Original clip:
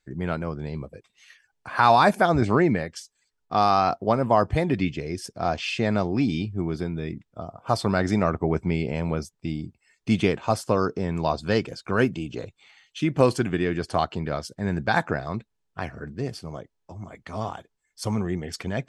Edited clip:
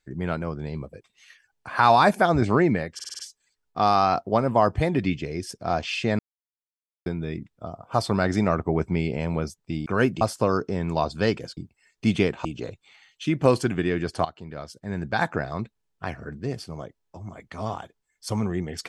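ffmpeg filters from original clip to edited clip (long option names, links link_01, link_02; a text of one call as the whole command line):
ffmpeg -i in.wav -filter_complex "[0:a]asplit=13[link_01][link_02][link_03][link_04][link_05][link_06][link_07][link_08][link_09][link_10][link_11][link_12][link_13];[link_01]atrim=end=2.992[link_14];[link_02]atrim=start=2.938:end=2.992[link_15];[link_03]atrim=start=2.938:end=2.992[link_16];[link_04]atrim=start=2.938:end=2.992[link_17];[link_05]atrim=start=2.938:end=2.992[link_18];[link_06]atrim=start=2.938:end=5.94,asetpts=PTS-STARTPTS,afade=type=out:start_time=2.998:duration=0.004:curve=hsin[link_19];[link_07]atrim=start=5.94:end=6.81,asetpts=PTS-STARTPTS,volume=0[link_20];[link_08]atrim=start=6.81:end=9.612,asetpts=PTS-STARTPTS,afade=type=in:duration=0.004:curve=hsin[link_21];[link_09]atrim=start=11.848:end=12.202[link_22];[link_10]atrim=start=10.488:end=11.852[link_23];[link_11]atrim=start=9.608:end=10.492[link_24];[link_12]atrim=start=12.198:end=14,asetpts=PTS-STARTPTS,afade=type=out:start_time=1.798:duration=0.004:curve=hsin:silence=0.177828[link_25];[link_13]atrim=start=14,asetpts=PTS-STARTPTS,afade=type=in:duration=1.25:silence=0.177828[link_26];[link_14][link_15]acrossfade=duration=0.004:curve1=hsin:curve2=hsin[link_27];[link_27][link_16]acrossfade=duration=0.004:curve1=hsin:curve2=hsin[link_28];[link_28][link_17]acrossfade=duration=0.004:curve1=hsin:curve2=hsin[link_29];[link_29][link_18]acrossfade=duration=0.004:curve1=hsin:curve2=hsin[link_30];[link_19][link_20][link_21]concat=n=3:v=0:a=1[link_31];[link_30][link_31]acrossfade=duration=0.004:curve1=hsin:curve2=hsin[link_32];[link_32][link_22]acrossfade=duration=0.004:curve1=hsin:curve2=hsin[link_33];[link_33][link_23]acrossfade=duration=0.004:curve1=hsin:curve2=hsin[link_34];[link_34][link_24]acrossfade=duration=0.004:curve1=hsin:curve2=hsin[link_35];[link_25][link_26]concat=n=2:v=0:a=1[link_36];[link_35][link_36]acrossfade=duration=0.004:curve1=hsin:curve2=hsin" out.wav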